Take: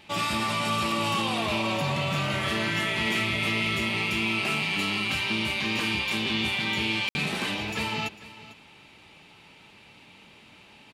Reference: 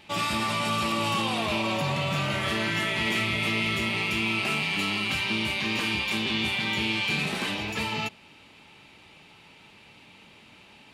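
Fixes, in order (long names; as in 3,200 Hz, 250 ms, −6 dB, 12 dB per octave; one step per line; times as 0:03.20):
ambience match 0:07.09–0:07.15
echo removal 449 ms −17 dB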